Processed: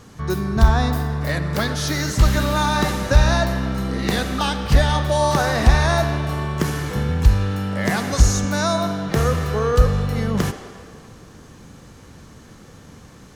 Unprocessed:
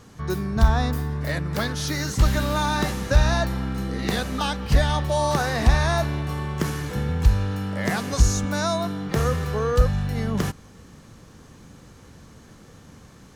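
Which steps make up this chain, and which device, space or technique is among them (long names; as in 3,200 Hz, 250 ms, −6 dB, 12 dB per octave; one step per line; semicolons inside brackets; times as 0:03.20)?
filtered reverb send (on a send: high-pass filter 300 Hz 24 dB per octave + low-pass filter 8,100 Hz + convolution reverb RT60 2.2 s, pre-delay 52 ms, DRR 8.5 dB)
on the sum: level +3.5 dB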